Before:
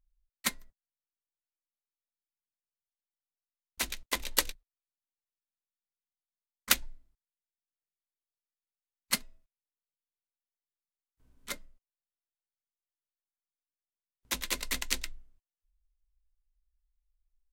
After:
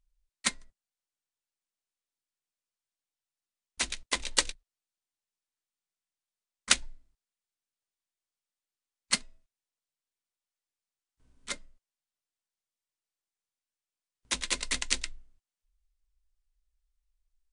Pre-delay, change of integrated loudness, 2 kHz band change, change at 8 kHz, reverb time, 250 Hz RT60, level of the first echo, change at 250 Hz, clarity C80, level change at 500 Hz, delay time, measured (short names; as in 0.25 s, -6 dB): none, +2.0 dB, +2.0 dB, +3.0 dB, none, none, none, 0.0 dB, none, 0.0 dB, none